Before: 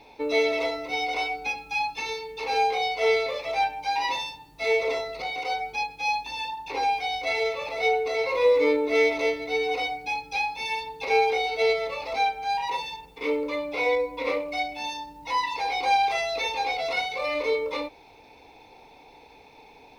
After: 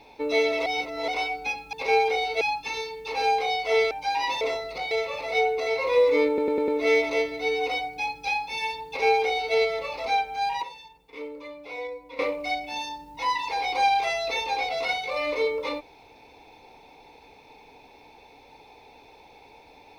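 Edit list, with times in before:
0.66–1.08 reverse
3.23–3.72 cut
4.22–4.85 cut
5.35–7.39 cut
8.76 stutter 0.10 s, 5 plays
10.95–11.63 copy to 1.73
12.71–14.27 gain -11 dB

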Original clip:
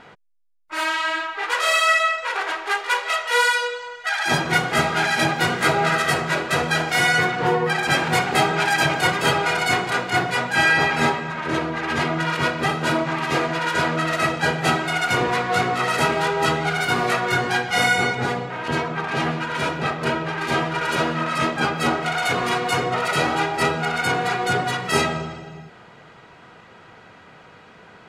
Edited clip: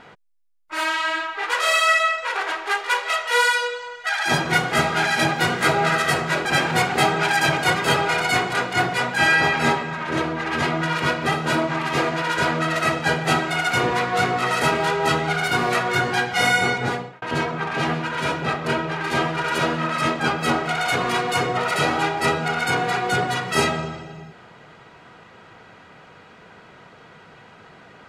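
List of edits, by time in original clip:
6.45–7.82 cut
18.25–18.59 fade out

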